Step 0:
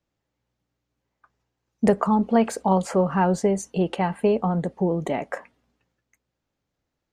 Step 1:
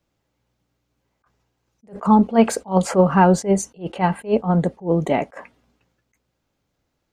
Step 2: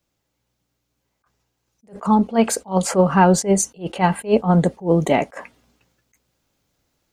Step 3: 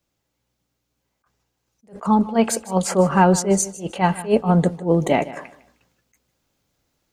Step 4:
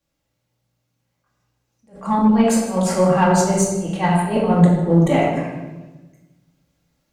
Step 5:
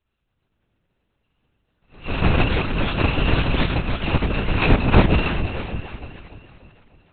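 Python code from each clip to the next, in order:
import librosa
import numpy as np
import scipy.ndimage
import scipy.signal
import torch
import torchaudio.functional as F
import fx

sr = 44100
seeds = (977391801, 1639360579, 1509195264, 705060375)

y1 = fx.notch(x, sr, hz=1800.0, q=22.0)
y1 = fx.attack_slew(y1, sr, db_per_s=260.0)
y1 = F.gain(torch.from_numpy(y1), 7.0).numpy()
y2 = fx.high_shelf(y1, sr, hz=3800.0, db=9.0)
y2 = fx.rider(y2, sr, range_db=10, speed_s=2.0)
y3 = fx.echo_feedback(y2, sr, ms=154, feedback_pct=28, wet_db=-17)
y3 = F.gain(torch.from_numpy(y3), -1.0).numpy()
y4 = fx.room_shoebox(y3, sr, seeds[0], volume_m3=650.0, walls='mixed', distance_m=2.3)
y4 = fx.cheby_harmonics(y4, sr, harmonics=(6,), levels_db=(-28,), full_scale_db=3.0)
y4 = F.gain(torch.from_numpy(y4), -4.5).numpy()
y5 = fx.bit_reversed(y4, sr, seeds[1], block=128)
y5 = fx.echo_alternate(y5, sr, ms=152, hz=800.0, feedback_pct=71, wet_db=-6.5)
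y5 = fx.lpc_vocoder(y5, sr, seeds[2], excitation='whisper', order=8)
y5 = F.gain(torch.from_numpy(y5), 4.0).numpy()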